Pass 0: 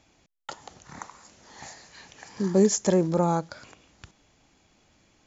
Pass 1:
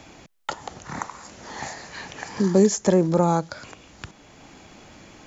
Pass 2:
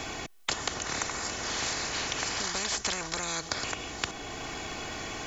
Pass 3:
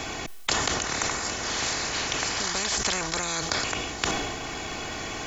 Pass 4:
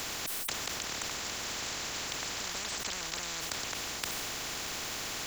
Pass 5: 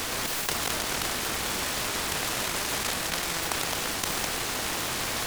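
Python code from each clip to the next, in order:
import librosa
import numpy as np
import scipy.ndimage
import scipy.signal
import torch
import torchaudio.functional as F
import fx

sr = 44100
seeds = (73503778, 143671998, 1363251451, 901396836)

y1 = fx.band_squash(x, sr, depth_pct=40)
y1 = F.gain(torch.from_numpy(y1), 5.5).numpy()
y2 = y1 + 0.61 * np.pad(y1, (int(2.7 * sr / 1000.0), 0))[:len(y1)]
y2 = fx.spectral_comp(y2, sr, ratio=10.0)
y2 = F.gain(torch.from_numpy(y2), -2.0).numpy()
y3 = fx.sustainer(y2, sr, db_per_s=30.0)
y3 = F.gain(torch.from_numpy(y3), 3.5).numpy()
y4 = fx.spectral_comp(y3, sr, ratio=10.0)
y4 = F.gain(torch.from_numpy(y4), -8.5).numpy()
y5 = fx.reverse_delay(y4, sr, ms=115, wet_db=-4.5)
y5 = fx.noise_mod_delay(y5, sr, seeds[0], noise_hz=1800.0, depth_ms=0.068)
y5 = F.gain(torch.from_numpy(y5), 6.5).numpy()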